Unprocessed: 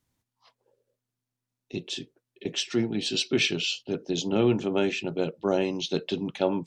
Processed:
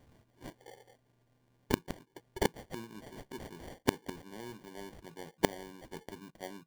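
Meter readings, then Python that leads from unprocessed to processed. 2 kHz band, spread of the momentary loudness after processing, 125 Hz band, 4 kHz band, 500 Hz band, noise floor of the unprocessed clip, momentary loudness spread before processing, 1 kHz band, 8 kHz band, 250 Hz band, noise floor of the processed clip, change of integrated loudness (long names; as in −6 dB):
−9.5 dB, 17 LU, −10.0 dB, −16.5 dB, −12.0 dB, below −85 dBFS, 11 LU, −4.0 dB, −10.0 dB, −12.0 dB, −73 dBFS, −12.0 dB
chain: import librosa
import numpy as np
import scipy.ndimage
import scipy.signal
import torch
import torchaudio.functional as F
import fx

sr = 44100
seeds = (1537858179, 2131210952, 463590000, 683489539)

y = fx.sample_hold(x, sr, seeds[0], rate_hz=1300.0, jitter_pct=0)
y = fx.rider(y, sr, range_db=4, speed_s=0.5)
y = fx.gate_flip(y, sr, shuts_db=-28.0, range_db=-34)
y = y * 10.0 ** (14.0 / 20.0)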